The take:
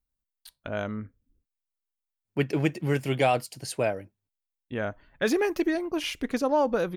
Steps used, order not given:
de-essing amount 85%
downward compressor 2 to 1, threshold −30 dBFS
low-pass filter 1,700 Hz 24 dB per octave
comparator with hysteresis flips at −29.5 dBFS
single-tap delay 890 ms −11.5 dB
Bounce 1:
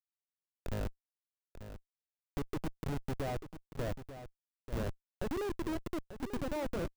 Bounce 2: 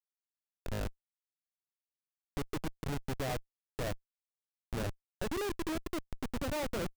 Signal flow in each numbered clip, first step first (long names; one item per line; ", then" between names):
low-pass filter, then downward compressor, then comparator with hysteresis, then de-essing, then single-tap delay
de-essing, then low-pass filter, then downward compressor, then single-tap delay, then comparator with hysteresis